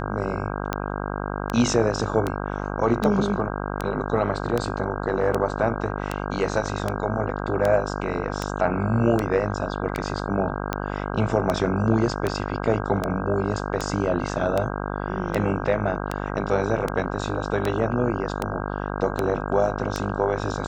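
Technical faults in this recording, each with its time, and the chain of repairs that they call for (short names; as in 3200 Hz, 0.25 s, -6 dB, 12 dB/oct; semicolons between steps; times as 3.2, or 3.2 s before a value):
buzz 50 Hz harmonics 32 -29 dBFS
tick 78 rpm -10 dBFS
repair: de-click; de-hum 50 Hz, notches 32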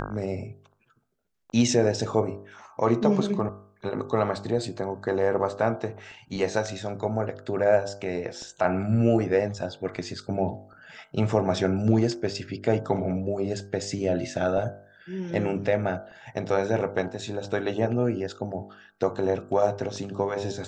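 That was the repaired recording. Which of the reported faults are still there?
none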